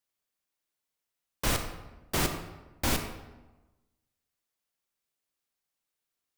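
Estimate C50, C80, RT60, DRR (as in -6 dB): 7.5 dB, 9.5 dB, 1.1 s, 6.0 dB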